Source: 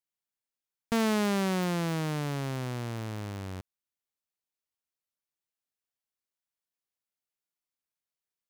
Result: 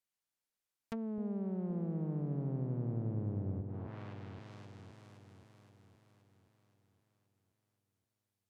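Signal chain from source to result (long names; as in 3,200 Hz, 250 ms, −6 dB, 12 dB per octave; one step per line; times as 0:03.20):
brickwall limiter −32 dBFS, peak gain reduction 11.5 dB
delay that swaps between a low-pass and a high-pass 261 ms, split 830 Hz, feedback 73%, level −5 dB
treble cut that deepens with the level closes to 410 Hz, closed at −35.5 dBFS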